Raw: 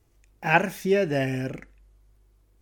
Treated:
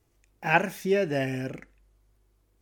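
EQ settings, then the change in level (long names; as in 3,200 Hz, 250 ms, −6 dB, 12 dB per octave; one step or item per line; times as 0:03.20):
low-shelf EQ 81 Hz −6.5 dB
−2.0 dB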